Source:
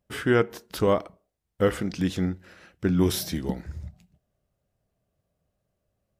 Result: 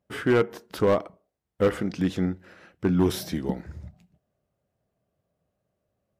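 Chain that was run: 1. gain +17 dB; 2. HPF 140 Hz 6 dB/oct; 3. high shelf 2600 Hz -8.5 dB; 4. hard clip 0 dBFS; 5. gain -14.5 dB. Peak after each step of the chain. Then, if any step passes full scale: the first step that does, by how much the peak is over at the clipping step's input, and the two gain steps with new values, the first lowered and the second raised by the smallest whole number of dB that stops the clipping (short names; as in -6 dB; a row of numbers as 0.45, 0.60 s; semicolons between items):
+8.0, +8.0, +7.0, 0.0, -14.5 dBFS; step 1, 7.0 dB; step 1 +10 dB, step 5 -7.5 dB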